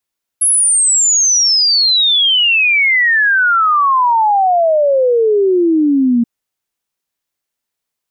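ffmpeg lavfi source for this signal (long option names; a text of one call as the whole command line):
ffmpeg -f lavfi -i "aevalsrc='0.376*clip(min(t,5.83-t)/0.01,0,1)*sin(2*PI*11000*5.83/log(230/11000)*(exp(log(230/11000)*t/5.83)-1))':duration=5.83:sample_rate=44100" out.wav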